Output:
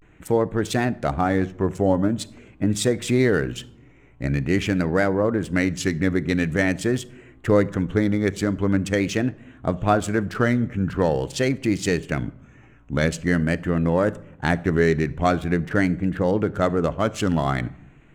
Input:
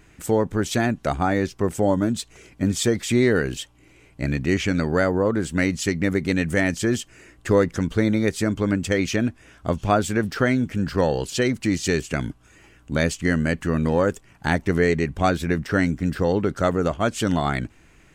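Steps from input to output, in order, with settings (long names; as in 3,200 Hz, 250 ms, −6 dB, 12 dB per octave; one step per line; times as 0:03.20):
adaptive Wiener filter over 9 samples
rectangular room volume 1,900 cubic metres, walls furnished, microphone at 0.45 metres
pitch vibrato 0.45 Hz 89 cents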